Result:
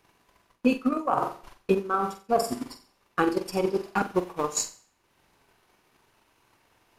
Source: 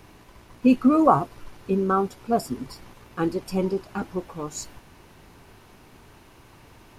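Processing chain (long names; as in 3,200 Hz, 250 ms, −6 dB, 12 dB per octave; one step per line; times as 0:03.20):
noise gate −38 dBFS, range −15 dB
low-shelf EQ 300 Hz −12 dB
flutter between parallel walls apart 7.7 metres, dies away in 0.47 s
reversed playback
downward compressor 16 to 1, threshold −28 dBFS, peak gain reduction 16 dB
reversed playback
transient designer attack +11 dB, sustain −6 dB
level +3 dB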